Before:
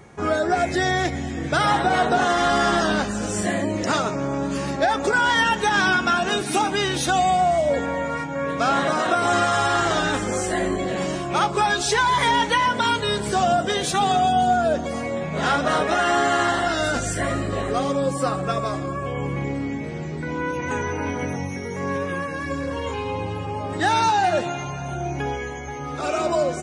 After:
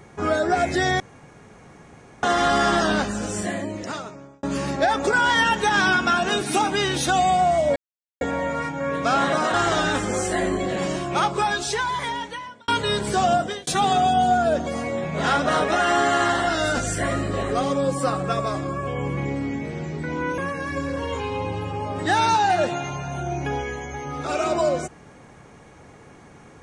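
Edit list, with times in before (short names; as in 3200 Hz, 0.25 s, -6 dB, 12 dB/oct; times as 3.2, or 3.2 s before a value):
1–2.23 room tone
2.99–4.43 fade out
7.76 insert silence 0.45 s
9.09–9.73 cut
11.28–12.87 fade out
13.54–13.86 fade out
20.57–22.12 cut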